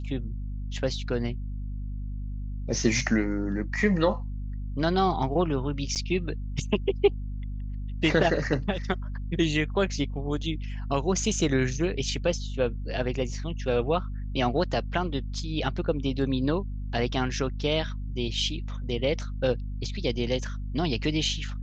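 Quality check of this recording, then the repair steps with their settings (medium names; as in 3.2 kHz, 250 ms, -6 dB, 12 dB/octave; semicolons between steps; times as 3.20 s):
hum 50 Hz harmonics 5 -33 dBFS
5.95–5.96 s: dropout 8.4 ms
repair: de-hum 50 Hz, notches 5; interpolate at 5.95 s, 8.4 ms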